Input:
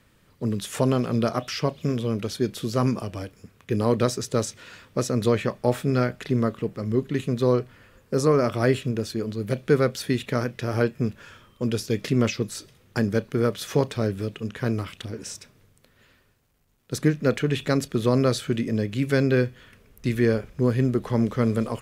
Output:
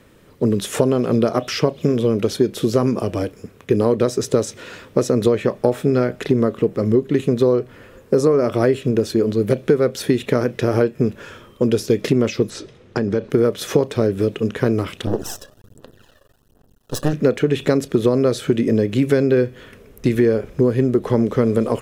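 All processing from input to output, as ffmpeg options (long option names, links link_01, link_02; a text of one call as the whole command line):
ffmpeg -i in.wav -filter_complex "[0:a]asettb=1/sr,asplit=3[link_01][link_02][link_03];[link_01]atrim=end=12.504[link_04];[link_02]atrim=start=12.5:end=13.3,asetpts=PTS-STARTPTS,afade=type=in:duration=0.004:curve=qsin,afade=type=out:start_time=0.796:duration=0.004:curve=qsin,lowpass=5300,acompressor=threshold=-26dB:ratio=5:attack=3.2:release=140:knee=1:detection=peak[link_05];[link_03]atrim=start=13.296[link_06];[link_04][link_05]acrossfade=duration=0.004:curve1=hsin:curve2=qsin[link_07];[link_07][link_06]acrossfade=duration=0.004:curve1=qsin:curve2=hsin,asettb=1/sr,asplit=3[link_08][link_09][link_10];[link_08]atrim=end=15.074[link_11];[link_09]atrim=start=15.07:end=17.13,asetpts=PTS-STARTPTS,afade=type=in:duration=0.004:curve=qsin,afade=type=out:start_time=2.056:duration=0.004:curve=qsin,aphaser=in_gain=1:out_gain=1:delay=1.8:decay=0.69:speed=1.3:type=sinusoidal,aeval=exprs='max(val(0),0)':channel_layout=same,asuperstop=centerf=2200:order=4:qfactor=3.1[link_12];[link_10]atrim=start=17.126[link_13];[link_11][link_12]acrossfade=duration=0.004:curve1=hsin:curve2=qsin[link_14];[link_14][link_13]acrossfade=duration=0.004:curve1=qsin:curve2=hsin,equalizer=frequency=410:width_type=o:width=1.6:gain=9,bandreject=frequency=4600:width=22,acompressor=threshold=-19dB:ratio=6,volume=6.5dB" out.wav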